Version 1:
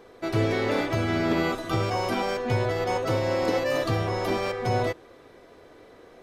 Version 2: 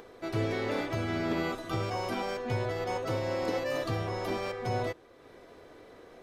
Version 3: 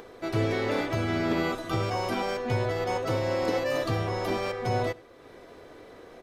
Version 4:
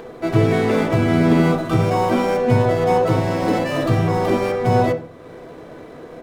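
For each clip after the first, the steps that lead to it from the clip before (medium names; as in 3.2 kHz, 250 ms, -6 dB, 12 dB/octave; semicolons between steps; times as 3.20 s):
upward compressor, threshold -38 dBFS; trim -6.5 dB
echo from a far wall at 16 m, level -24 dB; trim +4 dB
median filter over 9 samples; on a send at -4 dB: reverberation RT60 0.45 s, pre-delay 3 ms; on the sum: trim +7.5 dB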